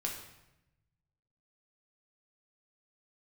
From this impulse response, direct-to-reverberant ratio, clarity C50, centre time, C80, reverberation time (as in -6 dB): -1.5 dB, 5.5 dB, 34 ms, 8.0 dB, 0.90 s